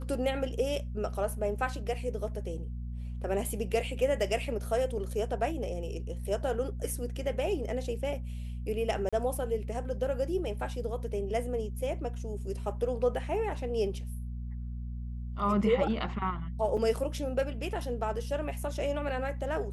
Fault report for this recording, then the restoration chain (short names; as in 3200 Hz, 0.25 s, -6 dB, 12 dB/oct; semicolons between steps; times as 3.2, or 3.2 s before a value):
hum 60 Hz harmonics 4 -37 dBFS
9.09–9.13 gap 36 ms
16.77–16.78 gap 5.4 ms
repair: de-hum 60 Hz, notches 4; interpolate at 9.09, 36 ms; interpolate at 16.77, 5.4 ms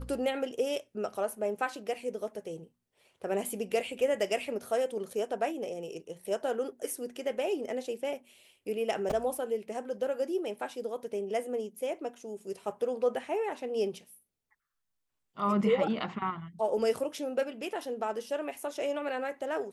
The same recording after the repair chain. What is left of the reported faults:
none